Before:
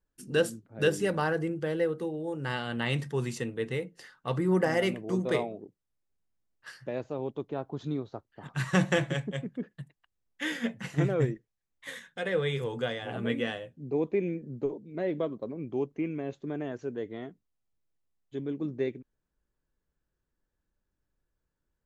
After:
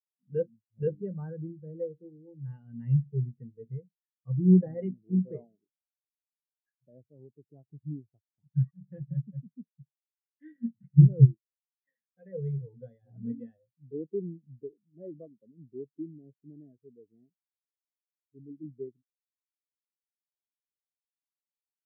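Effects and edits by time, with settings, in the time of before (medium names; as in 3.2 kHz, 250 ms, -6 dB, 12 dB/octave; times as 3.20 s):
8.71–9.17 s: fade in
whole clip: tone controls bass +9 dB, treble -12 dB; spectral contrast expander 2.5:1; trim +3.5 dB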